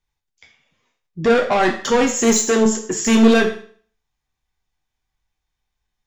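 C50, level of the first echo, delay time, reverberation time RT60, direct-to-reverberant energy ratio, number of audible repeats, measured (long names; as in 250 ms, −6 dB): 9.0 dB, no echo audible, no echo audible, 0.50 s, 2.0 dB, no echo audible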